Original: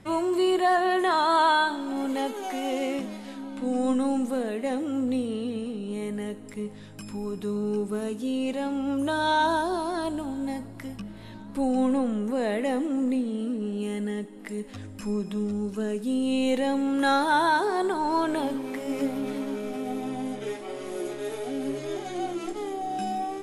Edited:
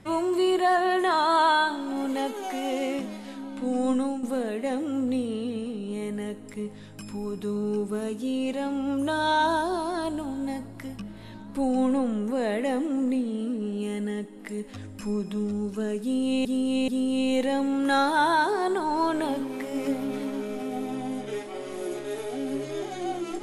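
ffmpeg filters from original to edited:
-filter_complex "[0:a]asplit=4[a][b][c][d];[a]atrim=end=4.23,asetpts=PTS-STARTPTS,afade=t=out:st=3.98:d=0.25:silence=0.316228[e];[b]atrim=start=4.23:end=16.452,asetpts=PTS-STARTPTS,afade=t=in:d=0.004:c=hsin:silence=0.316228[f];[c]atrim=start=16.018:end=16.452[g];[d]atrim=start=16.018[h];[e][f]concat=n=2:v=0:a=1[i];[i][g]acrossfade=d=0.004:c1=hsin:c2=hsin[j];[j][h]acrossfade=d=0.004:c1=hsin:c2=hsin"

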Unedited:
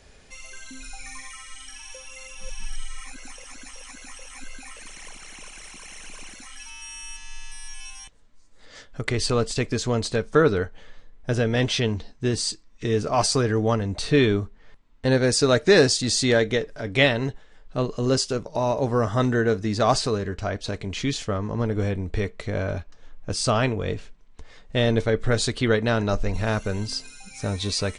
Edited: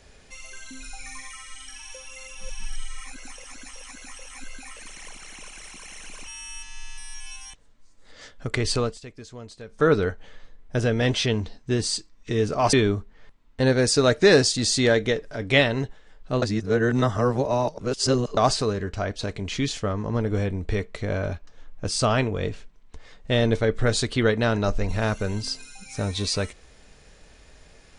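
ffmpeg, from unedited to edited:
-filter_complex "[0:a]asplit=7[a][b][c][d][e][f][g];[a]atrim=end=6.272[h];[b]atrim=start=6.808:end=9.53,asetpts=PTS-STARTPTS,afade=t=out:st=2.492:d=0.23:silence=0.149624[i];[c]atrim=start=9.53:end=10.21,asetpts=PTS-STARTPTS,volume=-16.5dB[j];[d]atrim=start=10.21:end=13.272,asetpts=PTS-STARTPTS,afade=t=in:d=0.23:silence=0.149624[k];[e]atrim=start=14.178:end=17.872[l];[f]atrim=start=17.868:end=19.822,asetpts=PTS-STARTPTS,areverse[m];[g]atrim=start=19.818[n];[i][j][k]concat=n=3:v=0:a=1[o];[h][o]acrossfade=d=0.004:c1=hsin:c2=hsin[p];[p][l]acrossfade=d=0.004:c1=hsin:c2=hsin[q];[q][m]acrossfade=d=0.004:c1=hsin:c2=hsin[r];[r][n]acrossfade=d=0.004:c1=hsin:c2=hsin"

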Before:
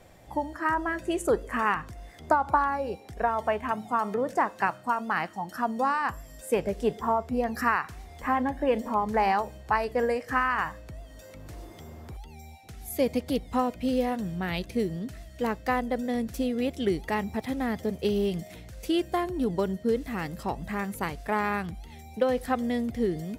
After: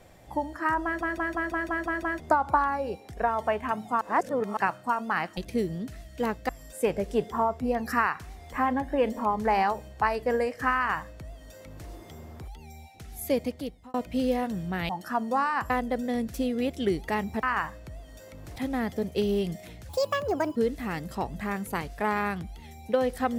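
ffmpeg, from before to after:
-filter_complex "[0:a]asplit=20[a][b][c][d][e][f][g][h][i][j][k][l][m][n][o][p][q][r][s][t];[a]atrim=end=1.012[u];[b]atrim=start=0.838:end=1.012[v];[c]atrim=start=0.838:end=1.012[w];[d]atrim=start=0.838:end=1.012[x];[e]atrim=start=0.838:end=1.012[y];[f]atrim=start=0.838:end=1.012[z];[g]atrim=start=0.838:end=1.012[aa];[h]atrim=start=0.838:end=1.012[ab];[i]atrim=start=2.198:end=4.012[ac];[j]atrim=start=4.008:end=4.572,asetpts=PTS-STARTPTS,areverse[ad];[k]atrim=start=4.568:end=5.372[ae];[l]atrim=start=14.578:end=15.702[af];[m]atrim=start=6.178:end=13.63,asetpts=PTS-STARTPTS,afade=t=out:st=6.792:d=0.66[ag];[n]atrim=start=13.63:end=14.582,asetpts=PTS-STARTPTS,afade=t=in:d=0.004:c=hsin[ah];[o]atrim=start=5.368:end=6.182[ai];[p]atrim=start=15.698:end=17.432[aj];[q]atrim=start=10.448:end=11.582[ak];[r]atrim=start=17.428:end=18.764[al];[s]atrim=start=18.76:end=19.84,asetpts=PTS-STARTPTS,asetrate=71001,aresample=44100[am];[t]atrim=start=19.836[an];[u][v]acrossfade=d=0.004:c1=hsin:c2=hsin[ao];[ao][w]acrossfade=d=0.004:c1=hsin:c2=hsin[ap];[ap][x]acrossfade=d=0.004:c1=hsin:c2=hsin[aq];[aq][y]acrossfade=d=0.004:c1=hsin:c2=hsin[ar];[ar][z]acrossfade=d=0.004:c1=hsin:c2=hsin[as];[as][aa]acrossfade=d=0.004:c1=hsin:c2=hsin[at];[at][ab]acrossfade=d=0.004:c1=hsin:c2=hsin[au];[au][ac]acrossfade=d=0.004:c1=hsin:c2=hsin[av];[av][ad]acrossfade=d=0.004:c1=hsin:c2=hsin[aw];[aw][ae]acrossfade=d=0.004:c1=hsin:c2=hsin[ax];[ax][af]acrossfade=d=0.004:c1=hsin:c2=hsin[ay];[ag][ah]concat=n=2:v=0:a=1[az];[ay][az]acrossfade=d=0.004:c1=hsin:c2=hsin[ba];[ba][ai]acrossfade=d=0.004:c1=hsin:c2=hsin[bb];[bb][aj]acrossfade=d=0.004:c1=hsin:c2=hsin[bc];[bc][ak]acrossfade=d=0.004:c1=hsin:c2=hsin[bd];[bd][al]acrossfade=d=0.004:c1=hsin:c2=hsin[be];[be][am]acrossfade=d=0.004:c1=hsin:c2=hsin[bf];[bf][an]acrossfade=d=0.004:c1=hsin:c2=hsin"

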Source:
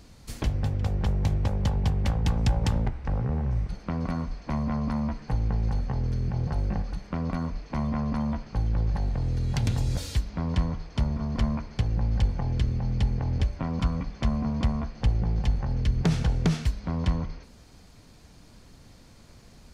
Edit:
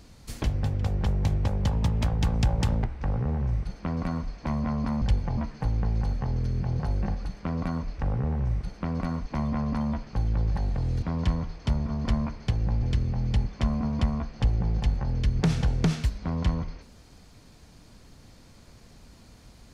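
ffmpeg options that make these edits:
-filter_complex "[0:a]asplit=10[a][b][c][d][e][f][g][h][i][j];[a]atrim=end=1.724[k];[b]atrim=start=1.72:end=2.08,asetpts=PTS-STARTPTS,asetrate=48951,aresample=44100[l];[c]atrim=start=2.076:end=5.052[m];[d]atrim=start=12.128:end=12.492[n];[e]atrim=start=5.048:end=7.662[o];[f]atrim=start=3.038:end=4.322[p];[g]atrim=start=7.658:end=9.422[q];[h]atrim=start=10.328:end=12.132[r];[i]atrim=start=12.488:end=13.132[s];[j]atrim=start=14.078[t];[k][l]acrossfade=d=0.004:c1=hsin:c2=hsin[u];[u][m]acrossfade=d=0.004:c1=hsin:c2=hsin[v];[v][n]acrossfade=d=0.004:c1=hsin:c2=hsin[w];[w][o]acrossfade=d=0.004:c1=hsin:c2=hsin[x];[x][p]acrossfade=d=0.004:c1=hsin:c2=hsin[y];[y][q]acrossfade=d=0.004:c1=hsin:c2=hsin[z];[z][r]acrossfade=d=0.004:c1=hsin:c2=hsin[aa];[aa][s]acrossfade=d=0.004:c1=hsin:c2=hsin[ab];[ab][t]acrossfade=d=0.004:c1=hsin:c2=hsin"

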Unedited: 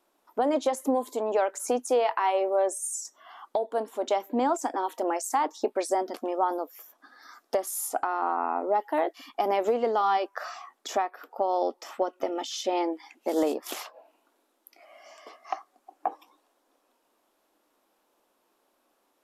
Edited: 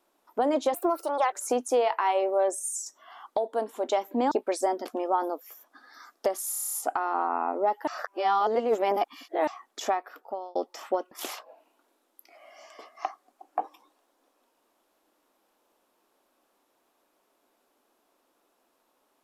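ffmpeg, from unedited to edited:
-filter_complex "[0:a]asplit=15[a][b][c][d][e][f][g][h][i][j][k][l][m][n][o];[a]atrim=end=0.744[p];[b]atrim=start=0.74:end=1.51,asetpts=PTS-STARTPTS,asetrate=58212,aresample=44100[q];[c]atrim=start=1.506:end=4.502[r];[d]atrim=start=5.598:end=7.822[s];[e]atrim=start=7.788:end=7.822[t];[f]atrim=start=7.788:end=7.822[u];[g]atrim=start=7.788:end=7.822[v];[h]atrim=start=7.788:end=7.822[w];[i]atrim=start=7.788:end=7.822[x];[j]atrim=start=7.788:end=7.822[y];[k]atrim=start=7.788:end=8.952[z];[l]atrim=start=8.948:end=10.552,asetpts=PTS-STARTPTS,areverse[aa];[m]atrim=start=10.548:end=11.63,asetpts=PTS-STARTPTS,afade=t=out:st=0.592:d=0.49[ab];[n]atrim=start=11.63:end=12.192,asetpts=PTS-STARTPTS,afade=t=in:d=0.004:c=hsin[ac];[o]atrim=start=13.588[ad];[p][q]acrossfade=d=0.004:c1=hsin:c2=hsin[ae];[ae][r]acrossfade=d=0.004:c1=hsin:c2=hsin[af];[af][s]acrossfade=d=0.004:c1=hsin:c2=hsin[ag];[ag][t]acrossfade=d=0.004:c1=hsin:c2=hsin[ah];[ah][u]acrossfade=d=0.004:c1=hsin:c2=hsin[ai];[ai][v]acrossfade=d=0.004:c1=hsin:c2=hsin[aj];[aj][w]acrossfade=d=0.004:c1=hsin:c2=hsin[ak];[ak][x]acrossfade=d=0.004:c1=hsin:c2=hsin[al];[al][y]acrossfade=d=0.004:c1=hsin:c2=hsin[am];[am][z]acrossfade=d=0.004:c1=hsin:c2=hsin[an];[an][aa]acrossfade=d=0.004:c1=hsin:c2=hsin[ao];[ab][ac]concat=n=2:v=0:a=1[ap];[ao][ap]acrossfade=d=0.004:c1=hsin:c2=hsin[aq];[aq][ad]acrossfade=d=0.004:c1=hsin:c2=hsin"

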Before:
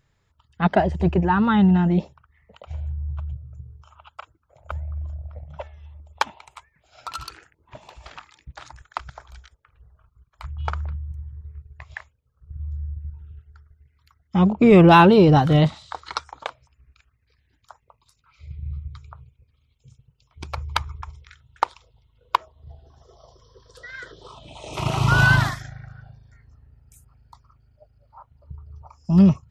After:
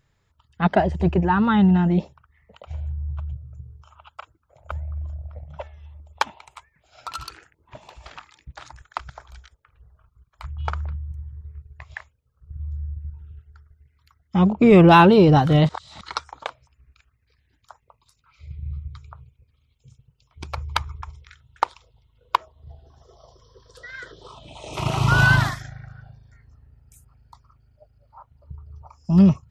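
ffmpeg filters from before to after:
-filter_complex "[0:a]asplit=3[a][b][c];[a]atrim=end=15.692[d];[b]atrim=start=15.688:end=16.012,asetpts=PTS-STARTPTS,areverse[e];[c]atrim=start=16.008[f];[d][e]acrossfade=d=0.004:c1=hsin:c2=hsin[g];[g][f]acrossfade=d=0.004:c1=hsin:c2=hsin"

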